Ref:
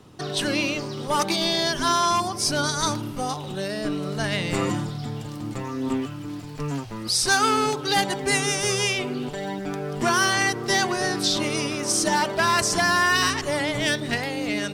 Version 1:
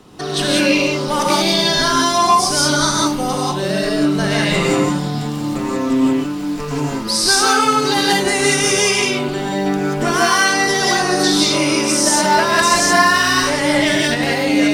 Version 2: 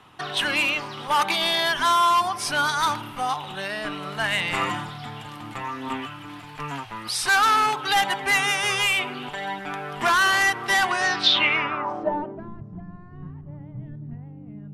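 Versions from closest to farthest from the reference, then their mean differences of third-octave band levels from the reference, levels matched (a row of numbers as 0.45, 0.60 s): 1, 2; 4.5, 9.5 dB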